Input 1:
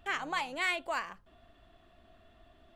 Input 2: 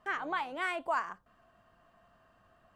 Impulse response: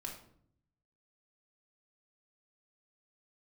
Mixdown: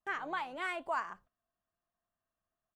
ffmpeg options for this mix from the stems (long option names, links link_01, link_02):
-filter_complex "[0:a]volume=-15dB[link_01];[1:a]adelay=5.7,volume=-3dB,asplit=2[link_02][link_03];[link_03]apad=whole_len=121279[link_04];[link_01][link_04]sidechaincompress=threshold=-38dB:ratio=8:attack=16:release=390[link_05];[link_05][link_02]amix=inputs=2:normalize=0,agate=range=-24dB:threshold=-58dB:ratio=16:detection=peak"